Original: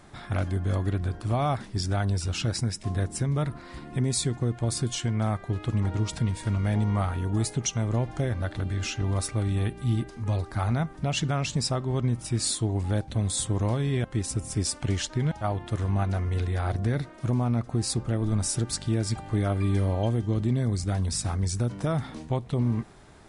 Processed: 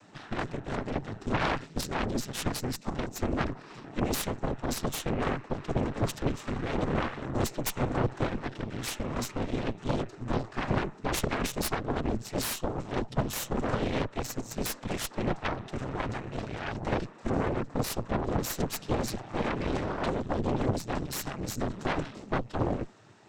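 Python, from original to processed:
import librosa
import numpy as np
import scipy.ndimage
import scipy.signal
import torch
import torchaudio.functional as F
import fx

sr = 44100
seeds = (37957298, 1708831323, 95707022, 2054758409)

y = fx.noise_vocoder(x, sr, seeds[0], bands=12)
y = fx.cheby_harmonics(y, sr, harmonics=(5, 7, 8), levels_db=(-17, -6, -7), full_scale_db=-12.0)
y = y * librosa.db_to_amplitude(-8.0)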